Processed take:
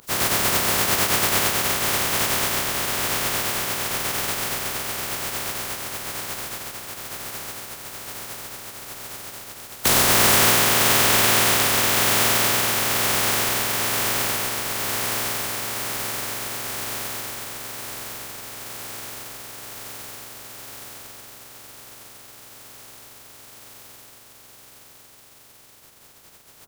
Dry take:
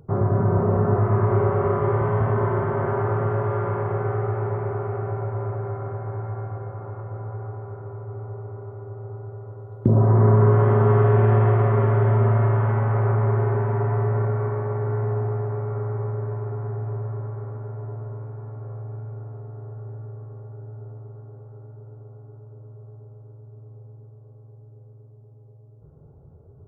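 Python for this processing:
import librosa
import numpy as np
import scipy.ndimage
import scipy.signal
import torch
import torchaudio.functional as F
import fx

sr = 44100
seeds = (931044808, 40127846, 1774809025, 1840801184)

y = fx.spec_flatten(x, sr, power=0.1)
y = y * 10.0 ** (-1.0 / 20.0)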